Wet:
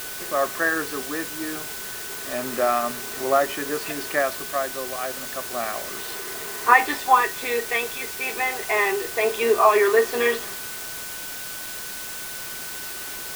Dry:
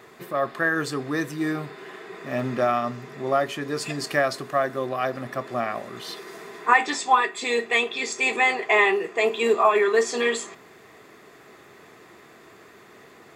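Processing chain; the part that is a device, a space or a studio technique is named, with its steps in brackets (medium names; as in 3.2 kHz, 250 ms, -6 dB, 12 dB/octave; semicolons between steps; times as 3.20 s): shortwave radio (band-pass 290–2900 Hz; tremolo 0.3 Hz, depth 56%; whistle 1.5 kHz -44 dBFS; white noise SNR 9 dB); trim +3 dB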